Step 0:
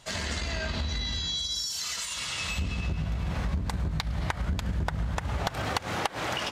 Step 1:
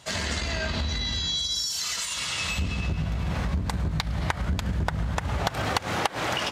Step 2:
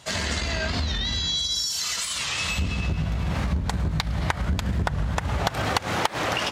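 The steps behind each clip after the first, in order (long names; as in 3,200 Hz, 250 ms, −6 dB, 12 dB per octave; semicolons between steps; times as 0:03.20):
high-pass filter 52 Hz; level +3.5 dB
wow of a warped record 45 rpm, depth 160 cents; level +2 dB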